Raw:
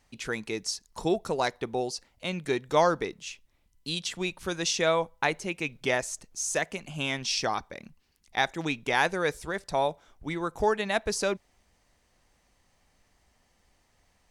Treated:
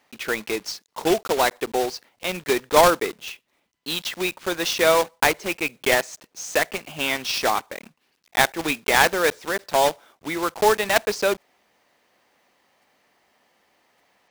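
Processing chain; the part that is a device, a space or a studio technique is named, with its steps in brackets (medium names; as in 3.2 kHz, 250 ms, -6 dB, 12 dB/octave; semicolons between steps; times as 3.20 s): early digital voice recorder (band-pass 300–3900 Hz; block-companded coder 3-bit); trim +7.5 dB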